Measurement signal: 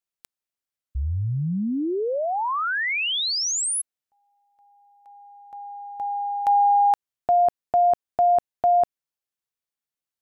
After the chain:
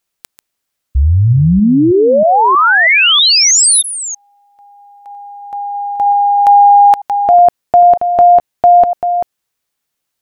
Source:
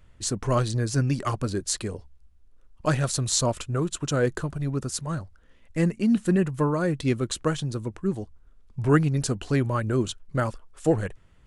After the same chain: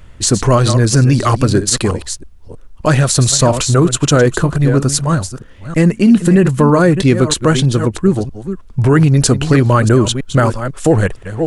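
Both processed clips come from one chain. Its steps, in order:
delay that plays each chunk backwards 319 ms, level −12 dB
boost into a limiter +17 dB
level −1 dB

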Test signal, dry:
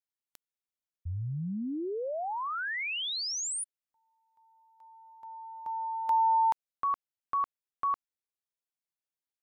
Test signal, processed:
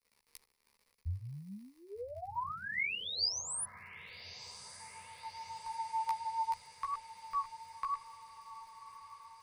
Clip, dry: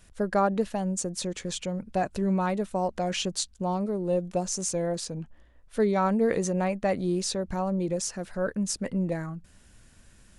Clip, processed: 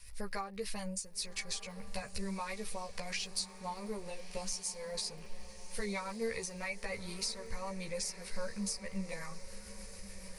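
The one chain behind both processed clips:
guitar amp tone stack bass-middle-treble 10-0-10
rotating-speaker cabinet horn 7 Hz
downward compressor 6 to 1, threshold −46 dBFS
surface crackle 69 per second −61 dBFS
multi-voice chorus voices 4, 0.27 Hz, delay 14 ms, depth 1.8 ms
EQ curve with evenly spaced ripples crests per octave 0.89, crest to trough 9 dB
feedback delay with all-pass diffusion 1,219 ms, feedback 62%, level −14 dB
level +12 dB

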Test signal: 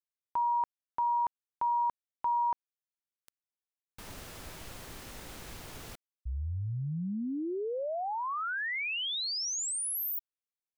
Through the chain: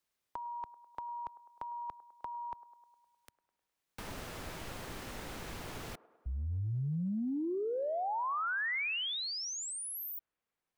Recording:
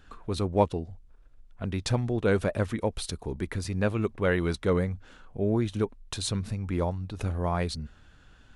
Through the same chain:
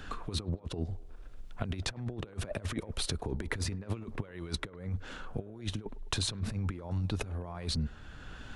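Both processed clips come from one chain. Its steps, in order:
high-shelf EQ 5,300 Hz −5 dB
compressor whose output falls as the input rises −34 dBFS, ratio −0.5
on a send: delay with a band-pass on its return 103 ms, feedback 55%, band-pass 690 Hz, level −17.5 dB
on the sum: multiband upward and downward compressor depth 40%
level −1 dB

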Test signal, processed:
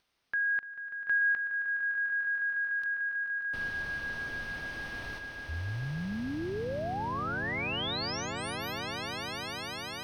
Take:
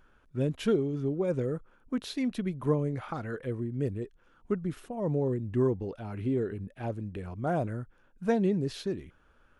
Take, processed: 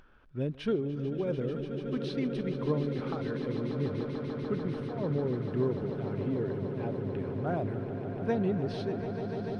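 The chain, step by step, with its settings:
upward compression, threshold −49 dBFS
Savitzky-Golay smoothing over 15 samples
echo that builds up and dies away 147 ms, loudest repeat 8, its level −12 dB
level −3.5 dB

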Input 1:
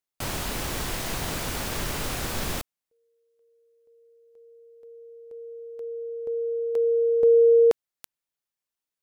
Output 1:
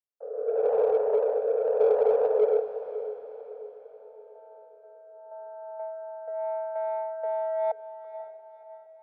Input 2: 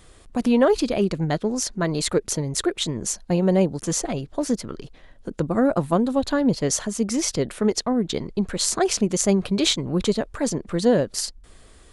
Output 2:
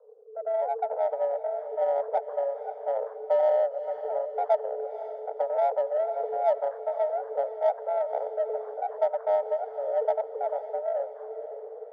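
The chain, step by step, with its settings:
samples in bit-reversed order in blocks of 64 samples
frequency shifter +420 Hz
automatic gain control gain up to 13.5 dB
rotating-speaker cabinet horn 0.85 Hz
Gaussian smoothing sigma 11 samples
in parallel at −9 dB: soft clipping −28 dBFS
on the sum: feedback delay with all-pass diffusion 526 ms, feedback 46%, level −12 dB

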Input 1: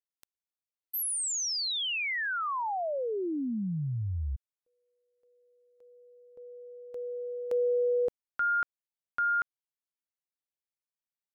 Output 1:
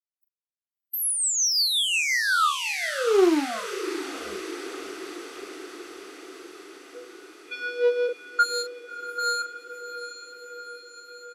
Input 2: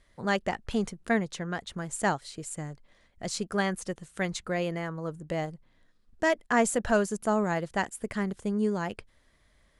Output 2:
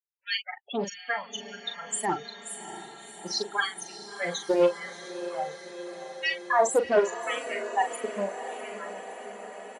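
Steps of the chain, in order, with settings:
spectral dynamics exaggerated over time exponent 3
mains-hum notches 50/100/150 Hz
dynamic equaliser 5,400 Hz, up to +7 dB, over −53 dBFS, Q 0.99
in parallel at +1 dB: output level in coarse steps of 19 dB
on the sum: leveller curve on the samples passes 3
soft clipping −23.5 dBFS
amplitude tremolo 5.6 Hz, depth 38%
auto-filter high-pass sine 0.84 Hz 330–2,600 Hz
spectral peaks only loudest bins 16
double-tracking delay 40 ms −8 dB
feedback delay with all-pass diffusion 669 ms, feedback 70%, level −12 dB
highs frequency-modulated by the lows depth 0.12 ms
level +2.5 dB

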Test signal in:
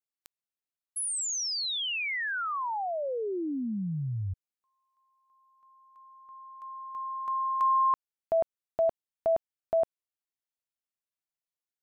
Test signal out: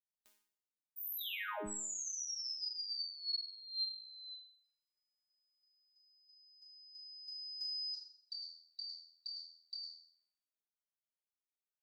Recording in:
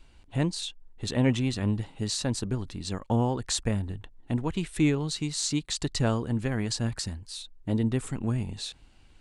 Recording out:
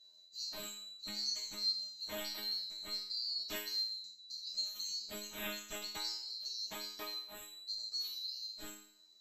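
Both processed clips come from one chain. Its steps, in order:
neighbouring bands swapped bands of 4,000 Hz
resonators tuned to a chord G#3 fifth, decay 0.6 s
level +9 dB

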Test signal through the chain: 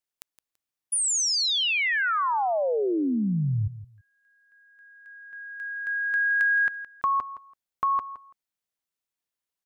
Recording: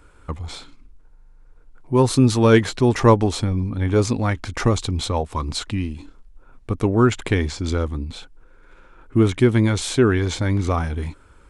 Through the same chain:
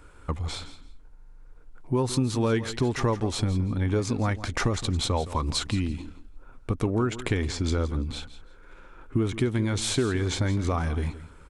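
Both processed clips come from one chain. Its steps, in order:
downward compressor 6 to 1, threshold −22 dBFS
repeating echo 167 ms, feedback 20%, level −14.5 dB

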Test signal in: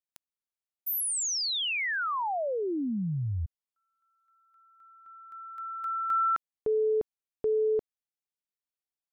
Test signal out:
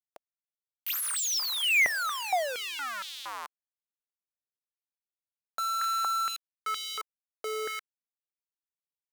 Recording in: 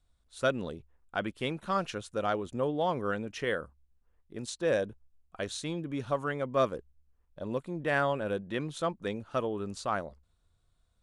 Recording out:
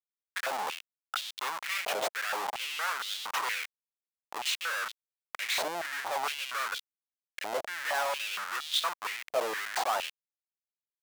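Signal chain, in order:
transient designer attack +4 dB, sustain +8 dB
comparator with hysteresis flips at −37.5 dBFS
high-pass on a step sequencer 4.3 Hz 640–3,500 Hz

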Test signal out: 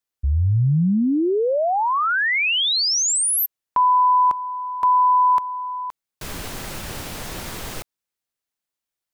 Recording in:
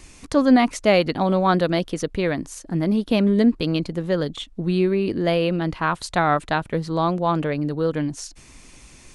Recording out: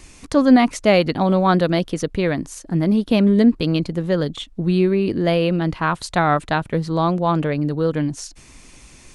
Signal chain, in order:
dynamic equaliser 130 Hz, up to +3 dB, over −35 dBFS, Q 0.74
level +1.5 dB

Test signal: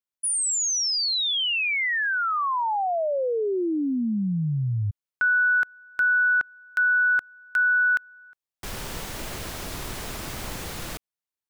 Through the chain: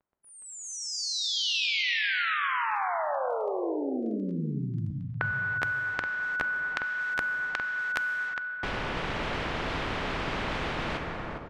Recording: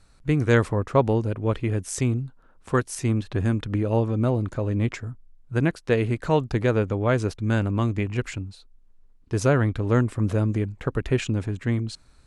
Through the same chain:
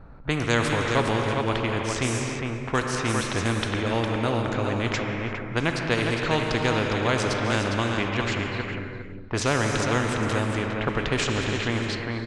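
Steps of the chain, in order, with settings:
on a send: repeating echo 407 ms, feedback 15%, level −7.5 dB
on the sum: surface crackle 10 per second −53 dBFS
high-shelf EQ 6,400 Hz −11.5 dB
reverb whose tail is shaped and stops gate 380 ms flat, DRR 5.5 dB
low-pass that shuts in the quiet parts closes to 1,100 Hz, open at −16.5 dBFS
every bin compressed towards the loudest bin 2 to 1

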